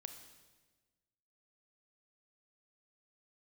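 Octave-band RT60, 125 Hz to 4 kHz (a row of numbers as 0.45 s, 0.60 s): 1.6 s, 1.6 s, 1.4 s, 1.2 s, 1.2 s, 1.2 s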